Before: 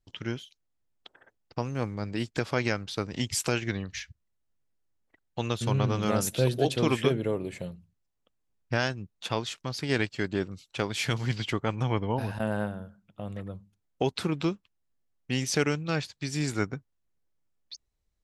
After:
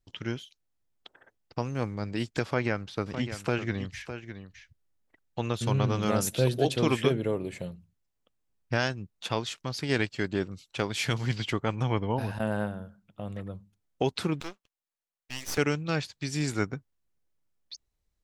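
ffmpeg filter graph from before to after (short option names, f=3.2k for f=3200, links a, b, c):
-filter_complex "[0:a]asettb=1/sr,asplit=3[a][b][c];[a]atrim=end=2.454[d];[b]atrim=start=2.45:end=5.54,asetpts=PTS-STARTPTS,afade=t=in:d=0.004:c=qsin,afade=t=out:st=3.086:d=0.004:c=qsin,acrossover=split=2600[e][f];[f]acompressor=threshold=-46dB:ratio=4:attack=1:release=60[g];[e][g]amix=inputs=2:normalize=0,aecho=1:1:608:0.299,atrim=end_sample=136269[h];[c]atrim=start=5.536[i];[d][h]acrossfade=d=0.004:c1=hsin:c2=qsin[j];[j][i]acrossfade=d=0.004:c1=qsin:c2=hsin,asettb=1/sr,asplit=3[k][l][m];[k]atrim=end=14.404[n];[l]atrim=start=14.4:end=15.58,asetpts=PTS-STARTPTS,afade=t=in:d=0.004:c=qsin,afade=t=out:st=1.176:d=0.004:c=qsin,highpass=580,aeval=exprs='max(val(0),0)':c=same[o];[m]atrim=start=15.576[p];[n][o]acrossfade=d=0.004:c1=hsin:c2=qsin[q];[q][p]acrossfade=d=0.004:c1=qsin:c2=hsin"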